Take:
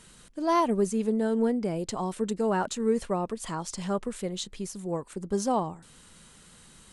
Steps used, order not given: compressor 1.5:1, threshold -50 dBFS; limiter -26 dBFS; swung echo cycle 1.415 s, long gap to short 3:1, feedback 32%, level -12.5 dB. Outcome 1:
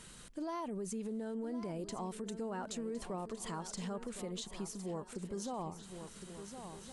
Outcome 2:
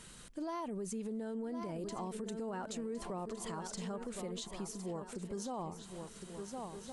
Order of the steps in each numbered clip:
limiter > swung echo > compressor; swung echo > limiter > compressor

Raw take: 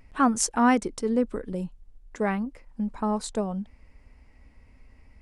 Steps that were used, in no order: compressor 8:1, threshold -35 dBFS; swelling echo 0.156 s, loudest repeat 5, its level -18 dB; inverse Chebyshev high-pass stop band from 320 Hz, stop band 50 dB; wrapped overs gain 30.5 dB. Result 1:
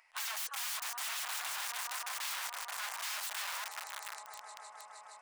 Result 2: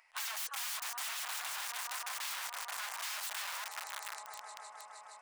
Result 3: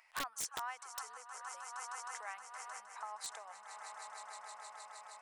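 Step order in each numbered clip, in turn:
swelling echo > wrapped overs > compressor > inverse Chebyshev high-pass; swelling echo > wrapped overs > inverse Chebyshev high-pass > compressor; swelling echo > compressor > inverse Chebyshev high-pass > wrapped overs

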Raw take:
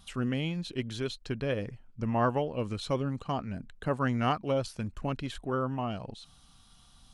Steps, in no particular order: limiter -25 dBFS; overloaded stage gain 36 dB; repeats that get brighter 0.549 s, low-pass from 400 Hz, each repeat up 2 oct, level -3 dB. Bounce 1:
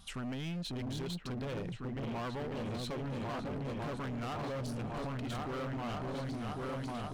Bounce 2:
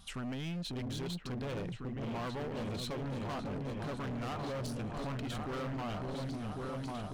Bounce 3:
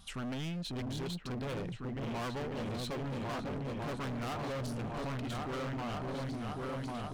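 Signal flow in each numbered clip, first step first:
repeats that get brighter > limiter > overloaded stage; limiter > repeats that get brighter > overloaded stage; repeats that get brighter > overloaded stage > limiter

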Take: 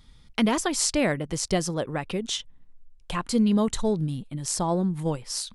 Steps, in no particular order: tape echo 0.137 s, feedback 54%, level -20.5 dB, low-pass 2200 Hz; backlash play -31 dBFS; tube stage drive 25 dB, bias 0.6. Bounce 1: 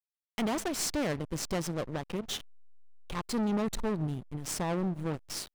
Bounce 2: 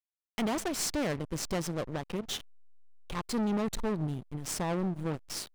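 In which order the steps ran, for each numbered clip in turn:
tube stage > tape echo > backlash; tape echo > tube stage > backlash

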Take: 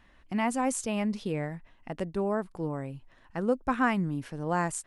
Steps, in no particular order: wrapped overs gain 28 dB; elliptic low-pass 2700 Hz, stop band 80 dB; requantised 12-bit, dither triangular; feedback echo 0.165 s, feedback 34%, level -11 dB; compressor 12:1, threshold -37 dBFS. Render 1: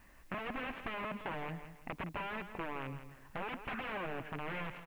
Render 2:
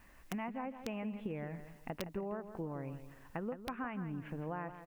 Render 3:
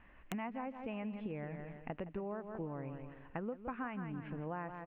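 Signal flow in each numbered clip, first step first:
wrapped overs > elliptic low-pass > compressor > requantised > feedback echo; elliptic low-pass > requantised > compressor > feedback echo > wrapped overs; feedback echo > compressor > requantised > elliptic low-pass > wrapped overs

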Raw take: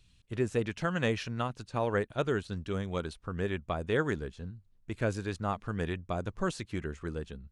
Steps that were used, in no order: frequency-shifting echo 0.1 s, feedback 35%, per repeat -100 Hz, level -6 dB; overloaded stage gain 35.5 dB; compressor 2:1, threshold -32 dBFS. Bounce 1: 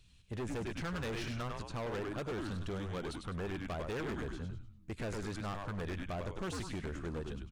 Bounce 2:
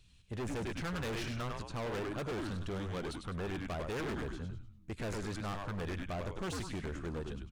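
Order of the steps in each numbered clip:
frequency-shifting echo > compressor > overloaded stage; frequency-shifting echo > overloaded stage > compressor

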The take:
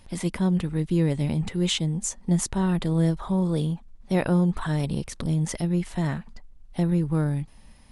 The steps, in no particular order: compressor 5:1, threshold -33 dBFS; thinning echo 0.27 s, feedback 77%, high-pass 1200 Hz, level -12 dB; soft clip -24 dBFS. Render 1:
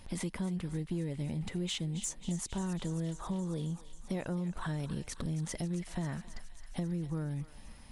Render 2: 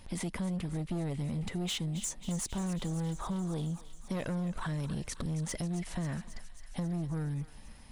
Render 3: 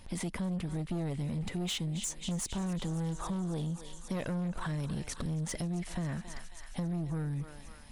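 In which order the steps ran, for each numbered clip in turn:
compressor > thinning echo > soft clip; soft clip > compressor > thinning echo; thinning echo > soft clip > compressor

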